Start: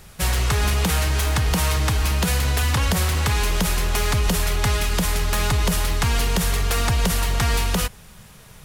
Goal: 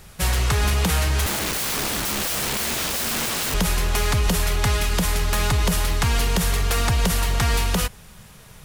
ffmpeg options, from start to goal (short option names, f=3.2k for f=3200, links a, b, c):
-filter_complex "[0:a]asettb=1/sr,asplit=3[a][b][c];[a]atrim=end=1.264[d];[b]atrim=start=1.26:end=3.54,asetpts=PTS-STARTPTS,afade=t=in:d=0.004:c=qsin,afade=t=out:st=2.276:d=0.004:c=qsin,aeval=exprs='(mod(10.6*val(0)+1,2)-1)/10.6':c=same[e];[c]atrim=start=3.536[f];[d][e]acrossfade=d=0.004:c1=hsin:c2=qsin[g];[g][f]acrossfade=d=0.004:c1=qsin:c2=hsin"